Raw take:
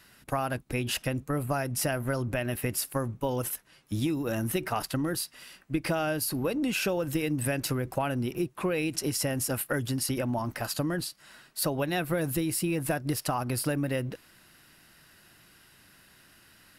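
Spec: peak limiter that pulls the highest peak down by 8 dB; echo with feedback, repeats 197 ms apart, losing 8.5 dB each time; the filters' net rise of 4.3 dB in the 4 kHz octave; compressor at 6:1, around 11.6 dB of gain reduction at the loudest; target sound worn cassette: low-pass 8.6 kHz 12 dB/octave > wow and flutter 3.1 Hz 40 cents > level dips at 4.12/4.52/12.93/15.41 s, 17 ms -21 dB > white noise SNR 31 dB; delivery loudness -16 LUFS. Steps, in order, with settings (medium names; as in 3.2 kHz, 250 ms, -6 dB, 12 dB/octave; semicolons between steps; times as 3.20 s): peaking EQ 4 kHz +6 dB; compression 6:1, threshold -37 dBFS; peak limiter -31 dBFS; low-pass 8.6 kHz 12 dB/octave; feedback delay 197 ms, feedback 38%, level -8.5 dB; wow and flutter 3.1 Hz 40 cents; level dips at 4.12/4.52/12.93/15.41 s, 17 ms -21 dB; white noise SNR 31 dB; trim +25 dB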